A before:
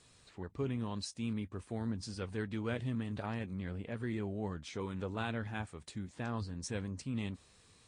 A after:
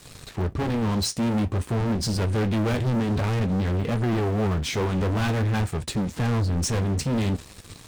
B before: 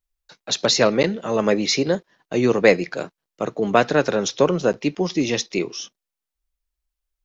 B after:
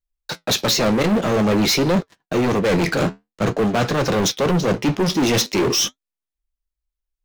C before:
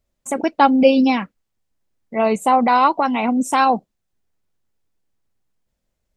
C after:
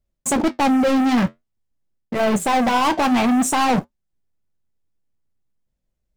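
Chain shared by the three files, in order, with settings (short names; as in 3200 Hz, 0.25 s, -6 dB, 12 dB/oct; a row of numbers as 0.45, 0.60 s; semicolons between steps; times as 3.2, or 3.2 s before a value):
low shelf 310 Hz +8 dB; reverse; compressor 20:1, threshold -24 dBFS; reverse; sample leveller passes 5; flange 0.5 Hz, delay 5.1 ms, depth 9.1 ms, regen -64%; gain +5.5 dB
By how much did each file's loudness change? +14.5, +1.5, -2.0 LU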